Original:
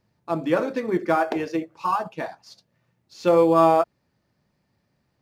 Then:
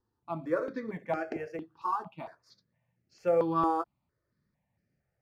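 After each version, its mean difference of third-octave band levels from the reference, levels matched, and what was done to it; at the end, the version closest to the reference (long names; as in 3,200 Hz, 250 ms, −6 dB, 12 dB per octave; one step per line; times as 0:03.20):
4.5 dB: high-shelf EQ 4,100 Hz −10.5 dB
step-sequenced phaser 4.4 Hz 620–3,600 Hz
level −6.5 dB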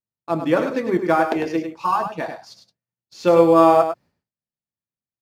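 2.0 dB: downward expander −50 dBFS
on a send: single-tap delay 101 ms −8 dB
on the sum: level +3 dB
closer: second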